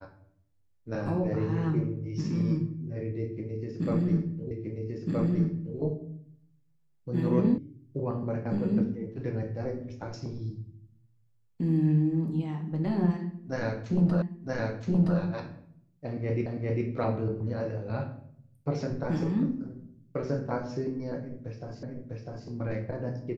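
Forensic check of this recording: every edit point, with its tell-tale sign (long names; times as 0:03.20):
0:04.51: the same again, the last 1.27 s
0:07.58: cut off before it has died away
0:14.22: the same again, the last 0.97 s
0:16.46: the same again, the last 0.4 s
0:21.83: the same again, the last 0.65 s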